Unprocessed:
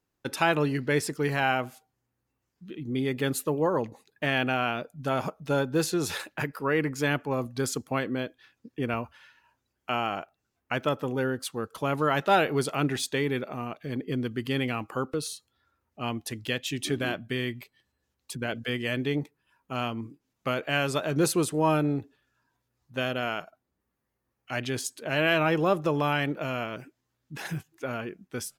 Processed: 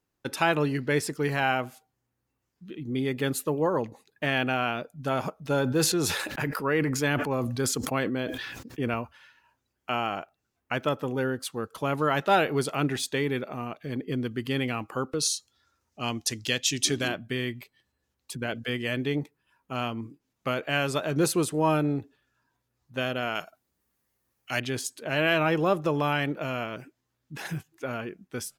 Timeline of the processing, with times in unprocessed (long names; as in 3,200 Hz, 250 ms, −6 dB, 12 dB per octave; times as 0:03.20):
0:05.38–0:08.94: level that may fall only so fast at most 34 dB per second
0:15.19–0:17.08: parametric band 6,000 Hz +14 dB 1.3 octaves
0:23.35–0:24.60: high-shelf EQ 2,800 Hz +11.5 dB